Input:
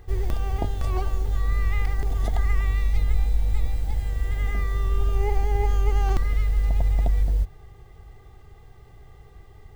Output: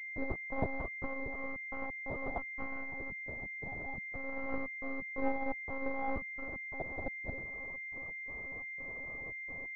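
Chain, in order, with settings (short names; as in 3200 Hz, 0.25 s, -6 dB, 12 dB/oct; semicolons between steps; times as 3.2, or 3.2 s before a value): compressor 2:1, threshold -25 dBFS, peak gain reduction 6 dB; step gate ".x.xx.xxx" 87 bpm -60 dB; limiter -23 dBFS, peak gain reduction 7.5 dB; steep high-pass 190 Hz 48 dB/oct; monotone LPC vocoder at 8 kHz 270 Hz; pulse-width modulation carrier 2100 Hz; gain +7.5 dB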